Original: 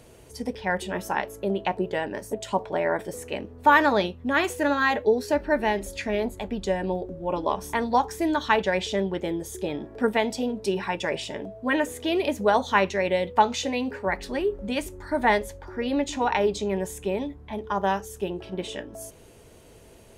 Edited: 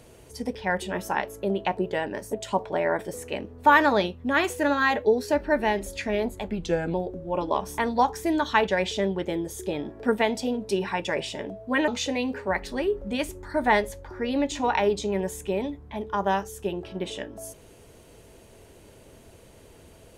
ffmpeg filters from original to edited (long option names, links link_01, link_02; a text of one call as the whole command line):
ffmpeg -i in.wav -filter_complex "[0:a]asplit=4[link_01][link_02][link_03][link_04];[link_01]atrim=end=6.514[link_05];[link_02]atrim=start=6.51:end=6.89,asetpts=PTS-STARTPTS,asetrate=39249,aresample=44100,atrim=end_sample=18829,asetpts=PTS-STARTPTS[link_06];[link_03]atrim=start=6.886:end=11.832[link_07];[link_04]atrim=start=13.448[link_08];[link_05][link_06]acrossfade=duration=0.004:curve1=hsin:curve2=hsin[link_09];[link_09][link_07]acrossfade=duration=0.004:curve1=hsin:curve2=hsin[link_10];[link_10][link_08]acrossfade=duration=0.004:curve1=hsin:curve2=hsin" out.wav